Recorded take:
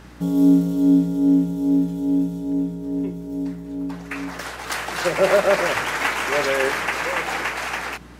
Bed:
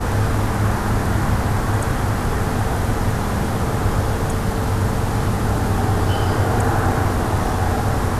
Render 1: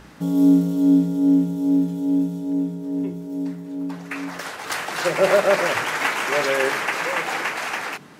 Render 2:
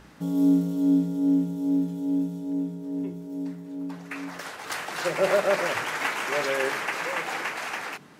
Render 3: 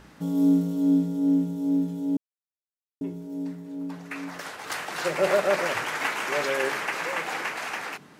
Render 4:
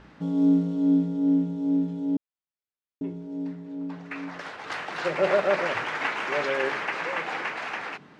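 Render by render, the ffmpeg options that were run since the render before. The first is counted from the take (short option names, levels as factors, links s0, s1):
-af "bandreject=f=60:t=h:w=4,bandreject=f=120:t=h:w=4,bandreject=f=180:t=h:w=4,bandreject=f=240:t=h:w=4,bandreject=f=300:t=h:w=4,bandreject=f=360:t=h:w=4,bandreject=f=420:t=h:w=4"
-af "volume=0.531"
-filter_complex "[0:a]asplit=3[s0][s1][s2];[s0]atrim=end=2.17,asetpts=PTS-STARTPTS,afade=t=out:st=2.166:d=0.004:c=hsin[s3];[s1]atrim=start=2.17:end=3.01,asetpts=PTS-STARTPTS,volume=0[s4];[s2]atrim=start=3.01,asetpts=PTS-STARTPTS,afade=t=in:d=0.004:c=hsin[s5];[s3][s4][s5]concat=n=3:v=0:a=1"
-af "lowpass=3800"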